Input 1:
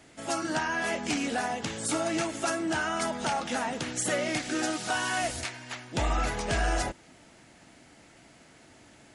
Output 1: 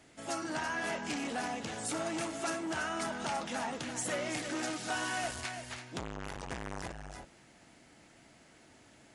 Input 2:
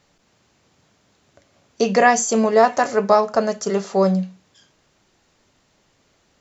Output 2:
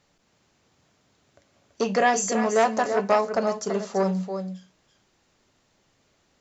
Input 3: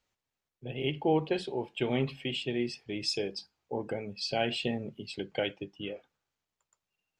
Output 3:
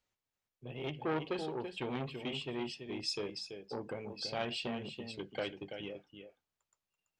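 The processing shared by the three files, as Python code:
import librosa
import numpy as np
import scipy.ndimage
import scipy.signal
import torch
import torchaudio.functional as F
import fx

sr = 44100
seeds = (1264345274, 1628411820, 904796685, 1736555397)

y = x + 10.0 ** (-9.0 / 20.0) * np.pad(x, (int(333 * sr / 1000.0), 0))[:len(x)]
y = fx.transformer_sat(y, sr, knee_hz=1000.0)
y = y * librosa.db_to_amplitude(-5.0)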